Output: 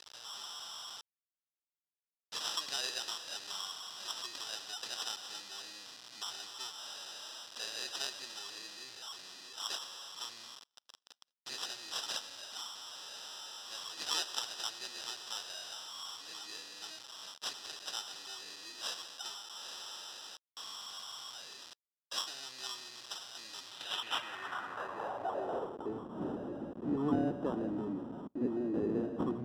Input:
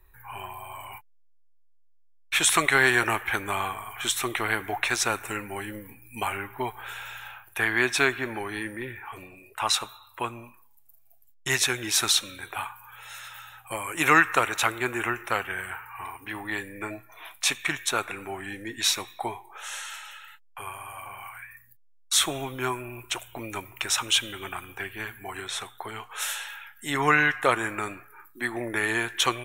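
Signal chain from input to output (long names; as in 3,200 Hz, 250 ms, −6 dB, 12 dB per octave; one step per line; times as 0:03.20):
converter with a step at zero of −25 dBFS
decimation without filtering 20×
band-pass filter sweep 4,700 Hz → 260 Hz, 0:23.64–0:26.12
level −3 dB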